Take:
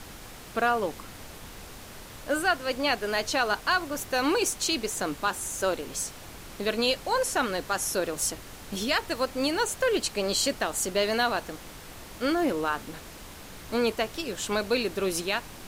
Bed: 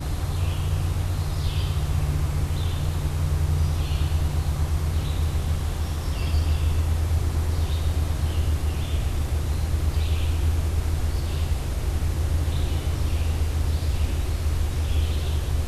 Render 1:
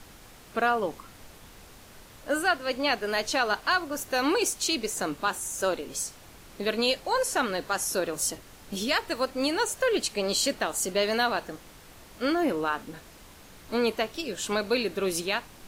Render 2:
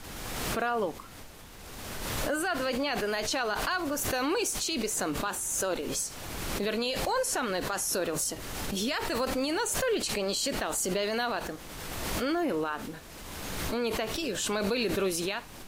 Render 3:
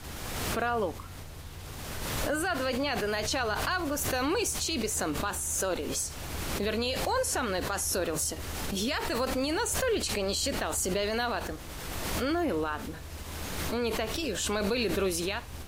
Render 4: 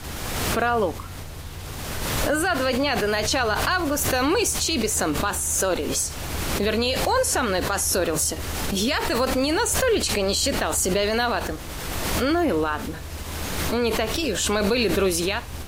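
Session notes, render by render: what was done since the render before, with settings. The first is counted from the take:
noise print and reduce 6 dB
peak limiter -21 dBFS, peak gain reduction 8.5 dB; swell ahead of each attack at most 26 dB/s
add bed -20 dB
trim +7.5 dB

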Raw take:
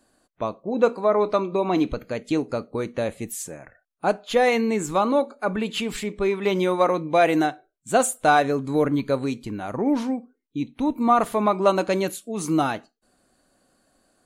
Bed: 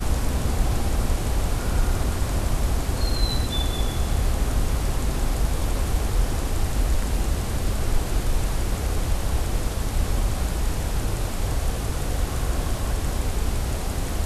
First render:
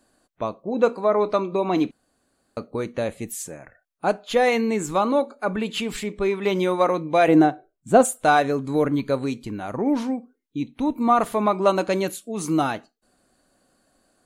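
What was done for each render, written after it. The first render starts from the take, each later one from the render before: 1.91–2.57 s: room tone; 7.28–8.05 s: tilt shelf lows +7.5 dB, about 1.3 kHz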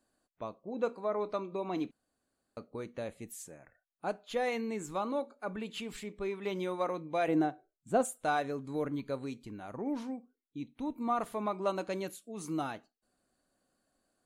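trim -13.5 dB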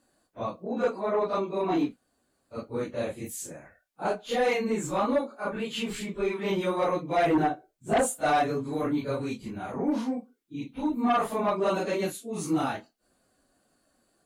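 phase randomisation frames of 100 ms; Chebyshev shaper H 5 -9 dB, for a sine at -15.5 dBFS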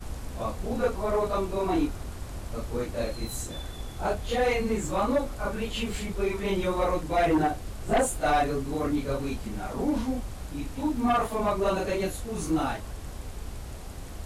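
add bed -13.5 dB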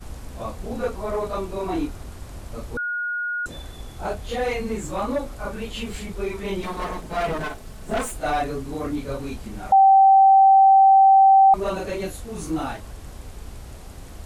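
2.77–3.46 s: bleep 1.44 kHz -23.5 dBFS; 6.62–8.12 s: comb filter that takes the minimum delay 4.6 ms; 9.72–11.54 s: bleep 776 Hz -9.5 dBFS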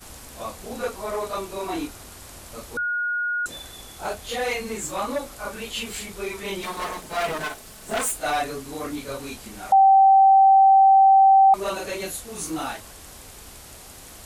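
tilt EQ +2.5 dB/octave; hum notches 60/120/180 Hz

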